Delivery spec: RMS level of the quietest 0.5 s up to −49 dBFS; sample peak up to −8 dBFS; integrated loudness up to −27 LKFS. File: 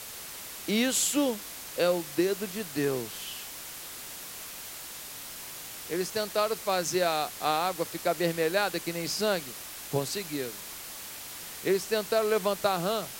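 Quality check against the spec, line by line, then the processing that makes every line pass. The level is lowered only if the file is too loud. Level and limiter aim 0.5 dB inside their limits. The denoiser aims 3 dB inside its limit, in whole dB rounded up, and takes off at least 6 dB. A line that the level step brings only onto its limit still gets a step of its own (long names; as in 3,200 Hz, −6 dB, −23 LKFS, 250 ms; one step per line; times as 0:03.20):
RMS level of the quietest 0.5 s −42 dBFS: out of spec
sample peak −11.0 dBFS: in spec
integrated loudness −30.5 LKFS: in spec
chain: broadband denoise 10 dB, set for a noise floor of −42 dBFS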